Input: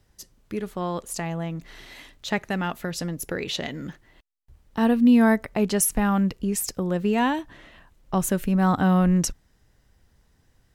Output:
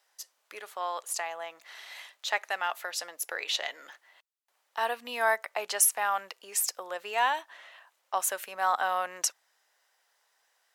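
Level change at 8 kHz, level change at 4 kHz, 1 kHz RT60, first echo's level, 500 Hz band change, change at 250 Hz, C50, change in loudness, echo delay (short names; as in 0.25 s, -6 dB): 0.0 dB, 0.0 dB, none, none, -8.0 dB, -35.0 dB, none, -6.5 dB, none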